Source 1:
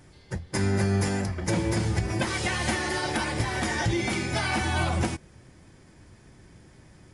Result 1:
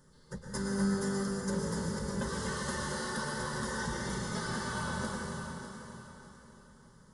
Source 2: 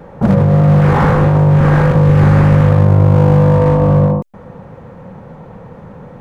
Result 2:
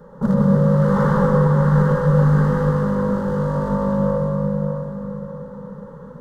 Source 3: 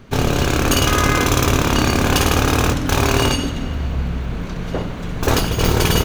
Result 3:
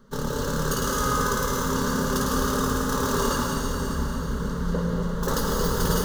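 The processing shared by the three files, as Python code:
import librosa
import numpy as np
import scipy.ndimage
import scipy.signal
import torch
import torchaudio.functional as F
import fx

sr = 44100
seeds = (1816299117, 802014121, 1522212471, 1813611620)

y = fx.rider(x, sr, range_db=5, speed_s=2.0)
y = fx.fixed_phaser(y, sr, hz=480.0, stages=8)
y = fx.echo_feedback(y, sr, ms=601, feedback_pct=33, wet_db=-10.5)
y = fx.rev_plate(y, sr, seeds[0], rt60_s=2.9, hf_ratio=0.8, predelay_ms=95, drr_db=-1.5)
y = F.gain(torch.from_numpy(y), -8.0).numpy()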